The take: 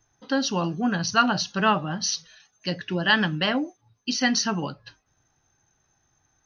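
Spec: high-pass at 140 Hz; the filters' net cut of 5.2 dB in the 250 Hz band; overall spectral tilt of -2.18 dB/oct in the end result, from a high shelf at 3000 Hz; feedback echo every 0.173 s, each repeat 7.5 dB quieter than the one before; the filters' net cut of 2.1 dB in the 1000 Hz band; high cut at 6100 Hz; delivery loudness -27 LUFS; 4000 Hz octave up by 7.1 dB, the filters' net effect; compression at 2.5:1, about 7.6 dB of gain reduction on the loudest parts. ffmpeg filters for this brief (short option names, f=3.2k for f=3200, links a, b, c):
-af "highpass=140,lowpass=6.1k,equalizer=f=250:t=o:g=-5.5,equalizer=f=1k:t=o:g=-4,highshelf=f=3k:g=4.5,equalizer=f=4k:t=o:g=7,acompressor=threshold=-25dB:ratio=2.5,aecho=1:1:173|346|519|692|865:0.422|0.177|0.0744|0.0312|0.0131"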